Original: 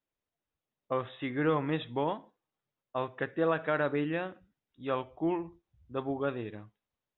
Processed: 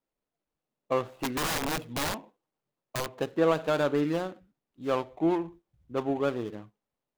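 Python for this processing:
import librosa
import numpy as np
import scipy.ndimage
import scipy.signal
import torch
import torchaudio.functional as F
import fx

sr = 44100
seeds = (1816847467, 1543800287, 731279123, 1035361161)

y = scipy.ndimage.median_filter(x, 25, mode='constant')
y = fx.peak_eq(y, sr, hz=77.0, db=-12.0, octaves=0.96)
y = fx.overflow_wrap(y, sr, gain_db=30.0, at=(1.04, 3.07))
y = y * 10.0 ** (5.5 / 20.0)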